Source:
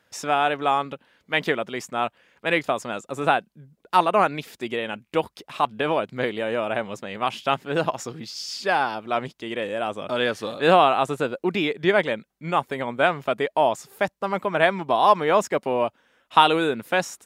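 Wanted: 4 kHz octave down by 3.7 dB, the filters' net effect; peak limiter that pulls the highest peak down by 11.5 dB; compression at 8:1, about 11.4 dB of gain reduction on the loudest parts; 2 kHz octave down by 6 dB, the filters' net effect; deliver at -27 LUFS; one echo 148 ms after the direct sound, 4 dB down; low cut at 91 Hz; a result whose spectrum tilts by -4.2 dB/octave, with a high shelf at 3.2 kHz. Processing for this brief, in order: high-pass 91 Hz; peaking EQ 2 kHz -9 dB; treble shelf 3.2 kHz +5.5 dB; peaking EQ 4 kHz -5 dB; compression 8:1, threshold -23 dBFS; peak limiter -20.5 dBFS; delay 148 ms -4 dB; trim +4.5 dB

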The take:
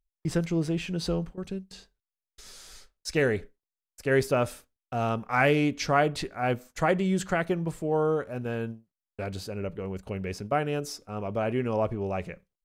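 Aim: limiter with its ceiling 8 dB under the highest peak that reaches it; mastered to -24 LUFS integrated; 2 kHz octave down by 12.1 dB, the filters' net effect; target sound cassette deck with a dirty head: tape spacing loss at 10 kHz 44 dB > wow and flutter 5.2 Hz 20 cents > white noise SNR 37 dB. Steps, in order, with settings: peaking EQ 2 kHz -6 dB; peak limiter -19.5 dBFS; tape spacing loss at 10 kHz 44 dB; wow and flutter 5.2 Hz 20 cents; white noise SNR 37 dB; trim +9.5 dB

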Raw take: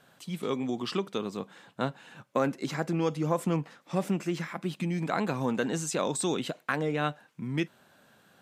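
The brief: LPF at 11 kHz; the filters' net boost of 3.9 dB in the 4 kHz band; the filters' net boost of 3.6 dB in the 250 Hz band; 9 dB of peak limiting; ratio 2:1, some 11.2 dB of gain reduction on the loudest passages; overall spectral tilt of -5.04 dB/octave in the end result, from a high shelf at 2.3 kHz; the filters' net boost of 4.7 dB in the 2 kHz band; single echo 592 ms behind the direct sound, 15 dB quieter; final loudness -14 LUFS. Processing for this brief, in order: low-pass 11 kHz; peaking EQ 250 Hz +5 dB; peaking EQ 2 kHz +7.5 dB; treble shelf 2.3 kHz -5.5 dB; peaking EQ 4 kHz +7 dB; compression 2:1, threshold -42 dBFS; peak limiter -28.5 dBFS; delay 592 ms -15 dB; trim +26.5 dB

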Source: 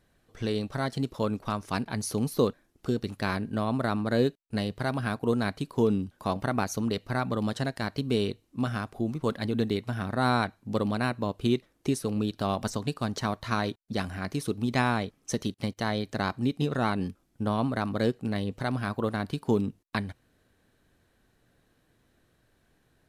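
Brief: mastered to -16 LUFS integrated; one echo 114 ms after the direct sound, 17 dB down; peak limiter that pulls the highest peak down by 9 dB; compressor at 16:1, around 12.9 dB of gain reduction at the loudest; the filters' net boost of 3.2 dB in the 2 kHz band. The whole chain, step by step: peaking EQ 2 kHz +4.5 dB; compression 16:1, threshold -32 dBFS; peak limiter -28.5 dBFS; delay 114 ms -17 dB; trim +24.5 dB

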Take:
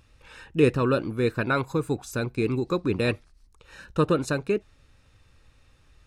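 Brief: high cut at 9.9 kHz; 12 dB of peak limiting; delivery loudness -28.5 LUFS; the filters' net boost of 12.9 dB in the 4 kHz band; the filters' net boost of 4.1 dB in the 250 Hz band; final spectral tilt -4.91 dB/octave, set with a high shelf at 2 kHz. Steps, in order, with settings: low-pass 9.9 kHz; peaking EQ 250 Hz +5 dB; treble shelf 2 kHz +9 dB; peaking EQ 4 kHz +6.5 dB; trim -2 dB; peak limiter -16.5 dBFS

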